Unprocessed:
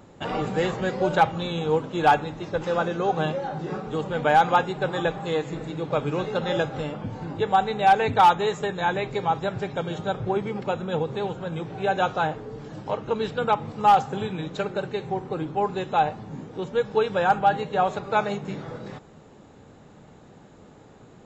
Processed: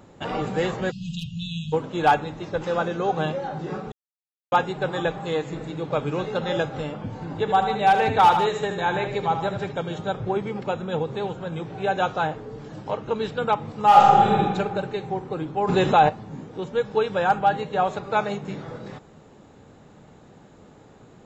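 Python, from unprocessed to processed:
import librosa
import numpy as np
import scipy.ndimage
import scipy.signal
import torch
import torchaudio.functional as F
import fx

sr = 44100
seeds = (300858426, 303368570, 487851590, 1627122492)

y = fx.brickwall_bandstop(x, sr, low_hz=220.0, high_hz=2500.0, at=(0.9, 1.72), fade=0.02)
y = fx.echo_multitap(y, sr, ms=(77, 151), db=(-8.0, -10.5), at=(7.3, 9.7), fade=0.02)
y = fx.reverb_throw(y, sr, start_s=13.87, length_s=0.51, rt60_s=1.7, drr_db=-5.5)
y = fx.env_flatten(y, sr, amount_pct=50, at=(15.67, 16.08), fade=0.02)
y = fx.edit(y, sr, fx.silence(start_s=3.92, length_s=0.6), tone=tone)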